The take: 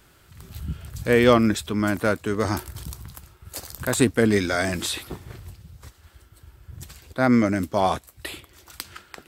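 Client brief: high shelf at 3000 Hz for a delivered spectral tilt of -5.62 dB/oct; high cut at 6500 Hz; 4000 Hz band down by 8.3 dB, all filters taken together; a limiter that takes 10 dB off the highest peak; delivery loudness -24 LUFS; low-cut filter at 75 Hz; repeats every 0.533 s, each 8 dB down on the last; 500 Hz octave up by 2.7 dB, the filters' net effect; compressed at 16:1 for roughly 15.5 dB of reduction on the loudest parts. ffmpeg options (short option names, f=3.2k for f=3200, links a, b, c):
-af "highpass=75,lowpass=6.5k,equalizer=f=500:t=o:g=3.5,highshelf=f=3k:g=-5,equalizer=f=4k:t=o:g=-6,acompressor=threshold=-24dB:ratio=16,alimiter=limit=-22.5dB:level=0:latency=1,aecho=1:1:533|1066|1599|2132|2665:0.398|0.159|0.0637|0.0255|0.0102,volume=11dB"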